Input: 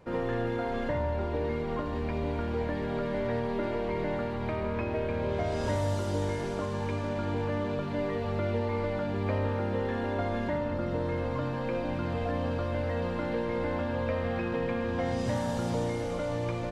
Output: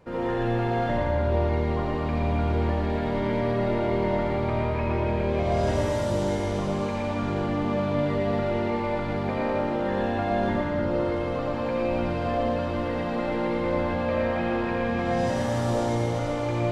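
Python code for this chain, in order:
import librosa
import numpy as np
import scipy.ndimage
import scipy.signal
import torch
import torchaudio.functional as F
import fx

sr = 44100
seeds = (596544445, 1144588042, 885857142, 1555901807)

y = x + 10.0 ** (-3.0 / 20.0) * np.pad(x, (int(117 * sr / 1000.0), 0))[:len(x)]
y = fx.rev_freeverb(y, sr, rt60_s=1.6, hf_ratio=0.6, predelay_ms=35, drr_db=-1.5)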